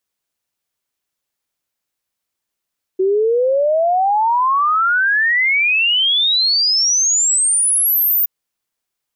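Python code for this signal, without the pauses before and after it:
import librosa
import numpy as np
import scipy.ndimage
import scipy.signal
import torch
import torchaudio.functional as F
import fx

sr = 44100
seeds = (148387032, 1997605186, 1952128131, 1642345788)

y = fx.ess(sr, length_s=5.27, from_hz=370.0, to_hz=15000.0, level_db=-12.0)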